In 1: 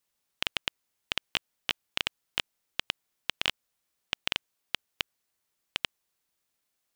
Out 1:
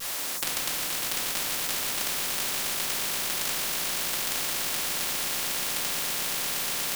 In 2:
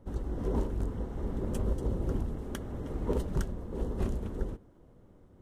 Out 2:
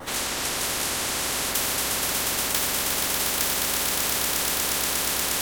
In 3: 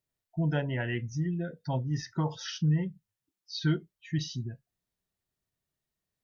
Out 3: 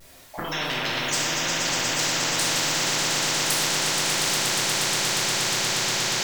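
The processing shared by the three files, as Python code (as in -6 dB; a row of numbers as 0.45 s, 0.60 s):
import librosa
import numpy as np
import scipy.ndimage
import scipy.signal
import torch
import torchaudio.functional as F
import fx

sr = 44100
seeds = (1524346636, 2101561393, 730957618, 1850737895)

p1 = scipy.signal.sosfilt(scipy.signal.butter(2, 360.0, 'highpass', fs=sr, output='sos'), x)
p2 = fx.dynamic_eq(p1, sr, hz=4900.0, q=1.2, threshold_db=-52.0, ratio=4.0, max_db=6)
p3 = fx.over_compress(p2, sr, threshold_db=-39.0, ratio=-1.0)
p4 = fx.env_flanger(p3, sr, rest_ms=11.9, full_db=-31.5)
p5 = fx.wow_flutter(p4, sr, seeds[0], rate_hz=2.1, depth_cents=100.0)
p6 = p5 + fx.echo_swell(p5, sr, ms=119, loudest=8, wet_db=-8, dry=0)
p7 = fx.room_shoebox(p6, sr, seeds[1], volume_m3=350.0, walls='mixed', distance_m=2.3)
p8 = fx.spectral_comp(p7, sr, ratio=10.0)
y = p8 * 10.0 ** (-6 / 20.0) / np.max(np.abs(p8))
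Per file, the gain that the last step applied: +13.5 dB, +16.0 dB, +12.5 dB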